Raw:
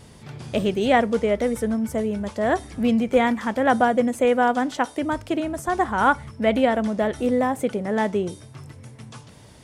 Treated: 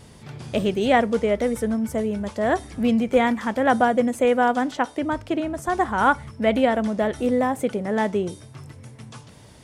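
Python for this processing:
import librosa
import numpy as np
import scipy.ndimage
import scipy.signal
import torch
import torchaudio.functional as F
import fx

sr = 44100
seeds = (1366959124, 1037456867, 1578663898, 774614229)

y = fx.high_shelf(x, sr, hz=6900.0, db=-8.5, at=(4.71, 5.62))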